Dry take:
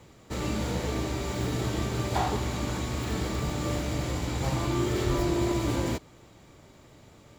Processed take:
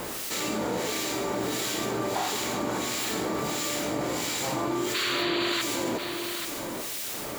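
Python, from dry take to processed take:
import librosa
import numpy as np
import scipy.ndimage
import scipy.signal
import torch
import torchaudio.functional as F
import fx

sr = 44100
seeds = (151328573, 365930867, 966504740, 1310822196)

p1 = scipy.signal.sosfilt(scipy.signal.butter(2, 280.0, 'highpass', fs=sr, output='sos'), x)
p2 = fx.high_shelf(p1, sr, hz=9700.0, db=9.0)
p3 = fx.dmg_noise_colour(p2, sr, seeds[0], colour='white', level_db=-52.0)
p4 = fx.harmonic_tremolo(p3, sr, hz=1.5, depth_pct=70, crossover_hz=1700.0)
p5 = fx.spec_paint(p4, sr, seeds[1], shape='noise', start_s=4.94, length_s=0.68, low_hz=1000.0, high_hz=4700.0, level_db=-32.0)
p6 = p5 + fx.echo_single(p5, sr, ms=836, db=-20.5, dry=0)
y = fx.env_flatten(p6, sr, amount_pct=70)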